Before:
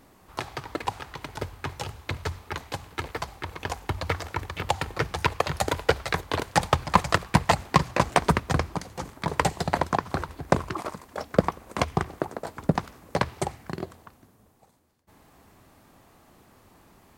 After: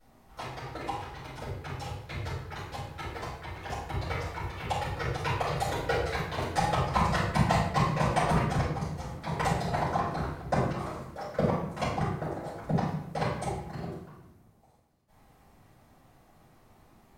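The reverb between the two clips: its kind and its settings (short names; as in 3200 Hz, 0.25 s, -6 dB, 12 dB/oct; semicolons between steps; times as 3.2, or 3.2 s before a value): shoebox room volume 200 m³, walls mixed, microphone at 6.3 m; gain -21 dB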